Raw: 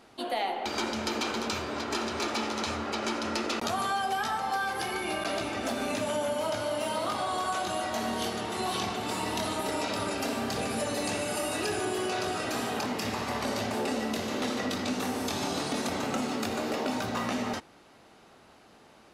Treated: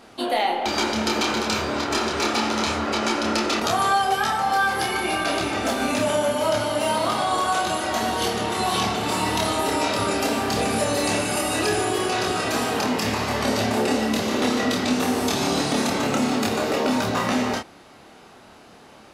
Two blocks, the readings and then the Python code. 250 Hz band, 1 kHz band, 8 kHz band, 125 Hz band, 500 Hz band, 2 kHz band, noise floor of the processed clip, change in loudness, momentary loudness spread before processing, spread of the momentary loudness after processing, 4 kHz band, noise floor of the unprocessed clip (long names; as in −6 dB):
+8.5 dB, +8.5 dB, +8.5 dB, +9.0 dB, +8.0 dB, +8.5 dB, −48 dBFS, +8.5 dB, 2 LU, 2 LU, +8.5 dB, −56 dBFS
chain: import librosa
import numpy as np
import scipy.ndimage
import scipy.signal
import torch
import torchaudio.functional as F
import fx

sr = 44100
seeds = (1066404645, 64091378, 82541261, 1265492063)

y = fx.doubler(x, sr, ms=28.0, db=-4)
y = y * 10.0 ** (7.0 / 20.0)